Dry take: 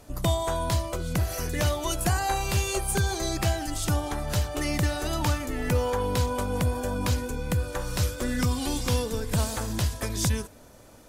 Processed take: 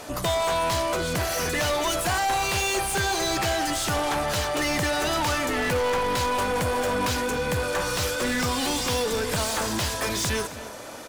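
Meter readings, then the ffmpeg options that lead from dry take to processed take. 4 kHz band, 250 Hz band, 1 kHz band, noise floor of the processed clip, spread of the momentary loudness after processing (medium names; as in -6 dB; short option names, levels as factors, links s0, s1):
+6.5 dB, +0.5 dB, +6.5 dB, -38 dBFS, 2 LU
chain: -filter_complex "[0:a]asplit=2[s0][s1];[s1]highpass=f=720:p=1,volume=25.1,asoftclip=type=tanh:threshold=0.211[s2];[s0][s2]amix=inputs=2:normalize=0,lowpass=f=4900:p=1,volume=0.501,asplit=2[s3][s4];[s4]adelay=268.2,volume=0.2,highshelf=f=4000:g=-6.04[s5];[s3][s5]amix=inputs=2:normalize=0,volume=0.631"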